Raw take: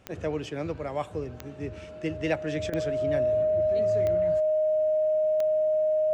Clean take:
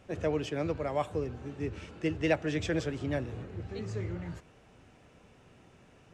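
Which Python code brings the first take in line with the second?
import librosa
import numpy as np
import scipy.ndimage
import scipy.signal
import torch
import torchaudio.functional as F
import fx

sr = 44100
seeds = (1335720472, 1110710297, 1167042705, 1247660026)

y = fx.fix_declick_ar(x, sr, threshold=10.0)
y = fx.notch(y, sr, hz=620.0, q=30.0)
y = fx.fix_interpolate(y, sr, at_s=(2.7,), length_ms=24.0)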